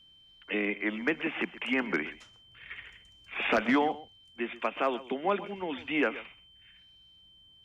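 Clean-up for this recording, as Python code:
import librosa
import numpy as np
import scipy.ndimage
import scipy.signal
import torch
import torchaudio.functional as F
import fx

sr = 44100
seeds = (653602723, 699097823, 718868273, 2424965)

y = fx.notch(x, sr, hz=3100.0, q=30.0)
y = fx.fix_echo_inverse(y, sr, delay_ms=127, level_db=-17.0)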